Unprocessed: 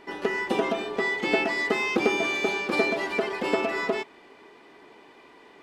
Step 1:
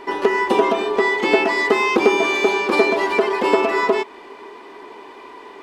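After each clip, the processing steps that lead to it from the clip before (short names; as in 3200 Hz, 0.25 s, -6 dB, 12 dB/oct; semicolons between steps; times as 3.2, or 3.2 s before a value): thirty-one-band EQ 100 Hz -11 dB, 160 Hz -11 dB, 400 Hz +6 dB, 1000 Hz +9 dB; in parallel at -1 dB: compressor, threshold -29 dBFS, peak gain reduction 14 dB; on the sum: gain +3.5 dB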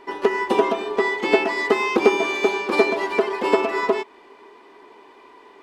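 upward expander 1.5:1, over -27 dBFS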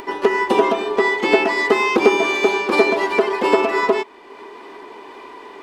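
in parallel at -3 dB: limiter -13 dBFS, peak gain reduction 10 dB; on the sum: upward compressor, threshold -30 dBFS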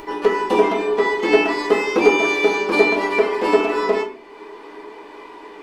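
shoebox room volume 38 m³, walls mixed, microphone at 0.57 m; gain -4 dB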